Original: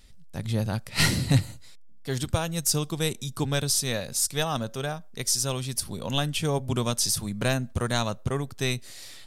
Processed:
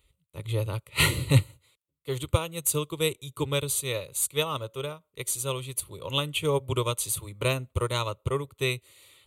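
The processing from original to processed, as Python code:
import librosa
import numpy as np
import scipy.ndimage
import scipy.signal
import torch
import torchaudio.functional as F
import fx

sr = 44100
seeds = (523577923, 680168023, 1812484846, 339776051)

y = scipy.signal.sosfilt(scipy.signal.butter(2, 58.0, 'highpass', fs=sr, output='sos'), x)
y = fx.fixed_phaser(y, sr, hz=1100.0, stages=8)
y = fx.upward_expand(y, sr, threshold_db=-46.0, expansion=1.5)
y = F.gain(torch.from_numpy(y), 7.0).numpy()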